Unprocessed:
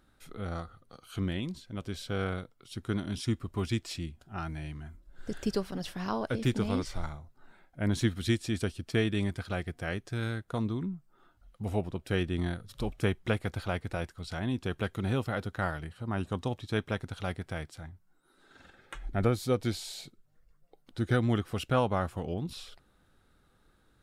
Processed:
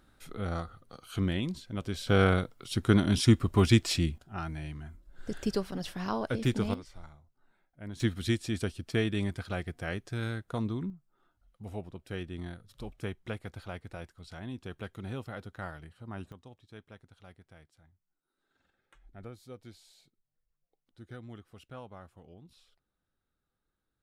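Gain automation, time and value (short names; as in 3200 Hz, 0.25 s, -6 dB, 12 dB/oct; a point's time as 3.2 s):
+2.5 dB
from 2.07 s +9 dB
from 4.18 s 0 dB
from 6.74 s -13 dB
from 8 s -1 dB
from 10.9 s -8.5 dB
from 16.32 s -19 dB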